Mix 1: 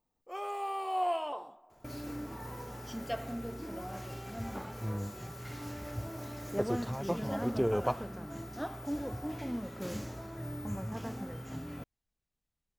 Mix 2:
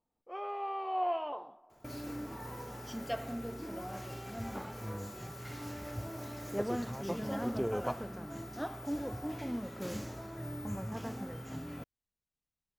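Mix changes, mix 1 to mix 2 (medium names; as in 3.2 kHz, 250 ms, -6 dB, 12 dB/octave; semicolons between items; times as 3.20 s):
speech -4.5 dB; first sound: add distance through air 290 m; master: add bass shelf 67 Hz -6 dB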